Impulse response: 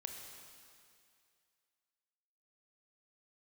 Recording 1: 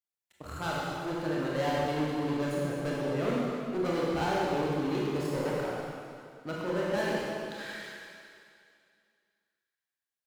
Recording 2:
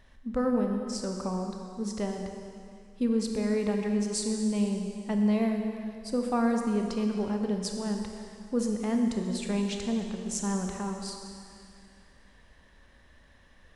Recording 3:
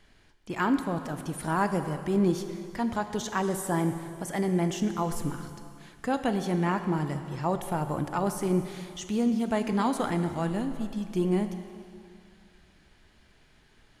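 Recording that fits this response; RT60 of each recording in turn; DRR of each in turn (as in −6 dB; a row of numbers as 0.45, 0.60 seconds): 2; 2.3, 2.3, 2.3 seconds; −6.0, 2.5, 8.0 decibels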